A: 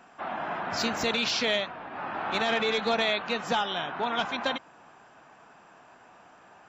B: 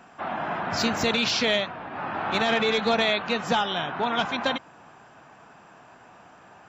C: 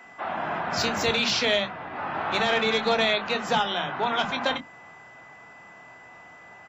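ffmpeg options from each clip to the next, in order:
-af "equalizer=f=110:w=0.74:g=6,volume=1.41"
-filter_complex "[0:a]asplit=2[s0][s1];[s1]adelay=24,volume=0.282[s2];[s0][s2]amix=inputs=2:normalize=0,acrossover=split=240[s3][s4];[s3]adelay=50[s5];[s5][s4]amix=inputs=2:normalize=0,aeval=exprs='val(0)+0.00398*sin(2*PI*2000*n/s)':c=same"

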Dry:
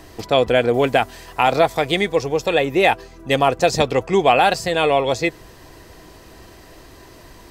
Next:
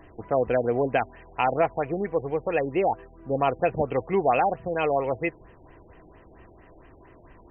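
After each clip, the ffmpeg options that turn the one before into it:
-af "afftfilt=real='re*lt(b*sr/1024,890*pow(3200/890,0.5+0.5*sin(2*PI*4.4*pts/sr)))':imag='im*lt(b*sr/1024,890*pow(3200/890,0.5+0.5*sin(2*PI*4.4*pts/sr)))':win_size=1024:overlap=0.75,volume=0.447"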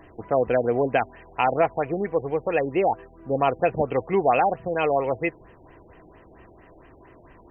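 -af "lowshelf=f=74:g=-5.5,volume=1.26"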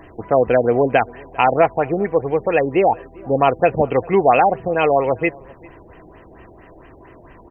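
-filter_complex "[0:a]asplit=2[s0][s1];[s1]adelay=396.5,volume=0.0562,highshelf=f=4000:g=-8.92[s2];[s0][s2]amix=inputs=2:normalize=0,volume=2.11"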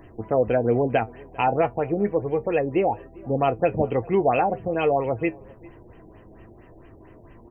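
-af "equalizer=f=1400:w=0.4:g=-8.5,flanger=delay=8.3:depth=1.4:regen=62:speed=1.2:shape=triangular,volume=1.41"

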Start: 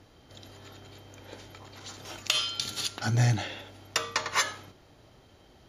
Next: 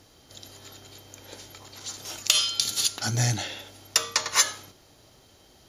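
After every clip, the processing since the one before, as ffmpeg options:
-af "bass=f=250:g=-2,treble=f=4000:g=12"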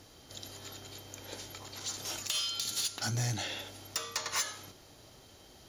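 -af "acompressor=threshold=0.0251:ratio=2,asoftclip=type=tanh:threshold=0.0531"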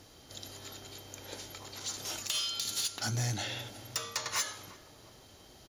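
-filter_complex "[0:a]asplit=2[s0][s1];[s1]adelay=351,lowpass=f=1100:p=1,volume=0.178,asplit=2[s2][s3];[s3]adelay=351,lowpass=f=1100:p=1,volume=0.53,asplit=2[s4][s5];[s5]adelay=351,lowpass=f=1100:p=1,volume=0.53,asplit=2[s6][s7];[s7]adelay=351,lowpass=f=1100:p=1,volume=0.53,asplit=2[s8][s9];[s9]adelay=351,lowpass=f=1100:p=1,volume=0.53[s10];[s0][s2][s4][s6][s8][s10]amix=inputs=6:normalize=0"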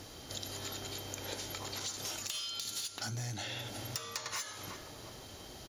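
-af "acompressor=threshold=0.00708:ratio=12,volume=2.11"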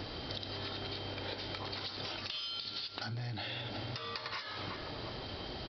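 -af "aresample=11025,aresample=44100,acompressor=threshold=0.00501:ratio=6,volume=2.66"

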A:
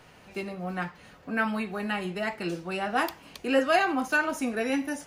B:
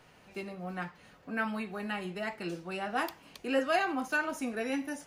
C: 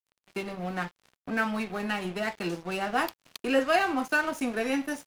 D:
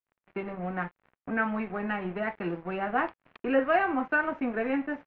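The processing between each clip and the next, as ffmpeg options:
-af "equalizer=f=66:w=2.4:g=-5,volume=0.531"
-filter_complex "[0:a]asplit=2[s0][s1];[s1]acompressor=threshold=0.00891:ratio=6,volume=1.26[s2];[s0][s2]amix=inputs=2:normalize=0,aeval=exprs='sgn(val(0))*max(abs(val(0))-0.00668,0)':c=same,volume=1.5"
-af "lowpass=f=2200:w=0.5412,lowpass=f=2200:w=1.3066"

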